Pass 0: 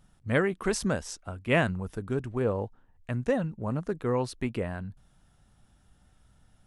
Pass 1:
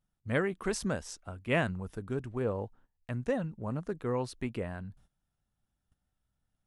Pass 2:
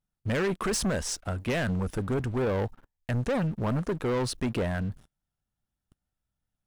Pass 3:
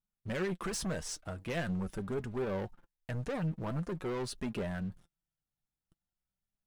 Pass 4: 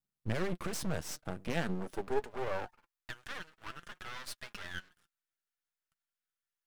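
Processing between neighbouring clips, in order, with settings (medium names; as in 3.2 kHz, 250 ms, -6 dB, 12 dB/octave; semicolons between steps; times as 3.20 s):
gate -54 dBFS, range -16 dB; trim -4.5 dB
peak limiter -24.5 dBFS, peak gain reduction 9.5 dB; waveshaping leveller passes 3; trim +2 dB
flange 0.45 Hz, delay 4.7 ms, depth 2 ms, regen +42%; trim -4 dB
high-pass sweep 110 Hz -> 1.5 kHz, 1.08–3.18 s; half-wave rectifier; trim +2.5 dB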